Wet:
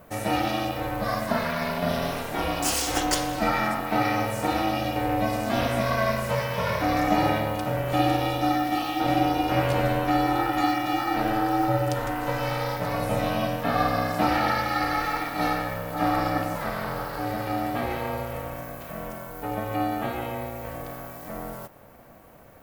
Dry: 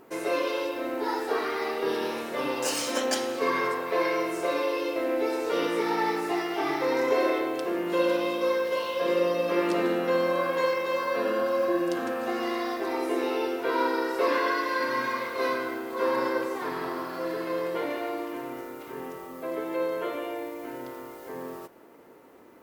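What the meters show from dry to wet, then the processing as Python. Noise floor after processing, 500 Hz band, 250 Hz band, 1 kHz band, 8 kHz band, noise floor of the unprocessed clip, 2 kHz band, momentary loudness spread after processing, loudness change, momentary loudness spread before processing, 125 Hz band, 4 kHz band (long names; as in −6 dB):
−40 dBFS, −2.5 dB, +3.5 dB, +5.5 dB, +4.5 dB, −44 dBFS, +2.0 dB, 11 LU, +2.0 dB, 10 LU, +18.5 dB, +3.5 dB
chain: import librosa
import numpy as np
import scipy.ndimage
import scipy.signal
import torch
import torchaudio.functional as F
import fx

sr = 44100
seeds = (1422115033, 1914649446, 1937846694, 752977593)

y = x * np.sin(2.0 * np.pi * 220.0 * np.arange(len(x)) / sr)
y = fx.high_shelf(y, sr, hz=11000.0, db=10.0)
y = F.gain(torch.from_numpy(y), 5.0).numpy()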